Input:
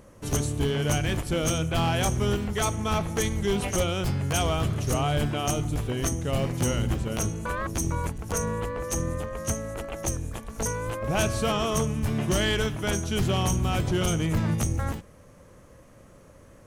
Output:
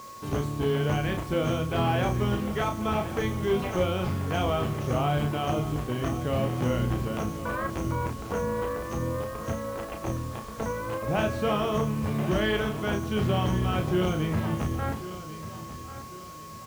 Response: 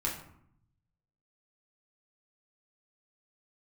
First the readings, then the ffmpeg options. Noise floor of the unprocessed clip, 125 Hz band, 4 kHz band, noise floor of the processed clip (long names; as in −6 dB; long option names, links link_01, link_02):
−52 dBFS, −1.5 dB, −5.0 dB, −41 dBFS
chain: -filter_complex "[0:a]lowpass=7600,acrossover=split=3700[link_01][link_02];[link_02]acompressor=threshold=-43dB:ratio=4:attack=1:release=60[link_03];[link_01][link_03]amix=inputs=2:normalize=0,highpass=frequency=120:poles=1,highshelf=frequency=3100:gain=-10,aeval=exprs='val(0)+0.00794*sin(2*PI*1100*n/s)':channel_layout=same,acrusher=bits=7:mix=0:aa=0.000001,asplit=2[link_04][link_05];[link_05]adelay=33,volume=-5.5dB[link_06];[link_04][link_06]amix=inputs=2:normalize=0,asplit=2[link_07][link_08];[link_08]aecho=0:1:1093|2186|3279|4372:0.2|0.0818|0.0335|0.0138[link_09];[link_07][link_09]amix=inputs=2:normalize=0"